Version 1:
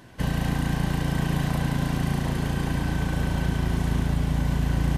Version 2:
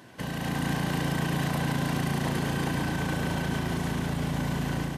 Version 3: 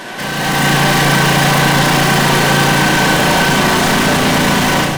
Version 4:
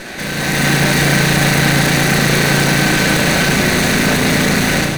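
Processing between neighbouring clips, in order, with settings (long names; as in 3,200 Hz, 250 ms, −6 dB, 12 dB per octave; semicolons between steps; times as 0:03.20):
brickwall limiter −21.5 dBFS, peak gain reduction 8 dB; automatic gain control gain up to 5.5 dB; Bessel high-pass filter 160 Hz, order 2
mid-hump overdrive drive 34 dB, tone 7,400 Hz, clips at −16 dBFS; automatic gain control gain up to 8.5 dB; convolution reverb RT60 0.40 s, pre-delay 5 ms, DRR 4 dB
lower of the sound and its delayed copy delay 0.48 ms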